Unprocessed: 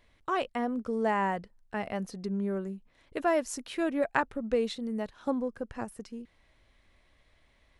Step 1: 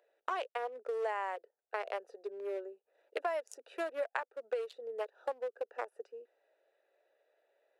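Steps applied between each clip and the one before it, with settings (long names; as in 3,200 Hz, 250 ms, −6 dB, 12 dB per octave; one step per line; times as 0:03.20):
adaptive Wiener filter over 41 samples
Butterworth high-pass 430 Hz 48 dB per octave
downward compressor 6 to 1, threshold −40 dBFS, peak gain reduction 17 dB
level +6.5 dB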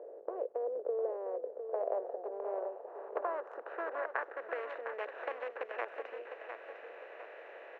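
compressor on every frequency bin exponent 0.4
low-pass filter sweep 490 Hz → 2,400 Hz, 0:01.25–0:05.04
repeating echo 705 ms, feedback 43%, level −8 dB
level −8.5 dB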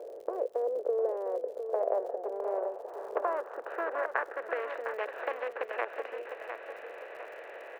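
surface crackle 78 per second −52 dBFS
level +5 dB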